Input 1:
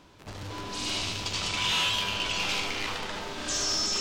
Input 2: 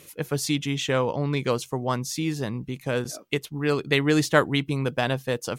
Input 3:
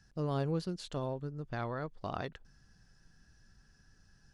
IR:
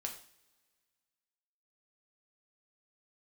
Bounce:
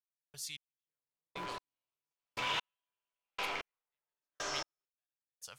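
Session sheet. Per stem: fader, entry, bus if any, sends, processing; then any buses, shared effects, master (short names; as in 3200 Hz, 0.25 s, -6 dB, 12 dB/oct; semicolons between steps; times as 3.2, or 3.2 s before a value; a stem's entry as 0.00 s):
-1.5 dB, 0.85 s, no send, three-band isolator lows -14 dB, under 410 Hz, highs -13 dB, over 2400 Hz
-12.5 dB, 0.00 s, send -15 dB, passive tone stack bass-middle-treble 10-0-10
-7.5 dB, 0.70 s, no send, limiter -33.5 dBFS, peak gain reduction 10.5 dB; short-mantissa float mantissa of 2-bit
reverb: on, pre-delay 3 ms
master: bell 96 Hz -4.5 dB 1.9 oct; step gate "...xx...." 133 bpm -60 dB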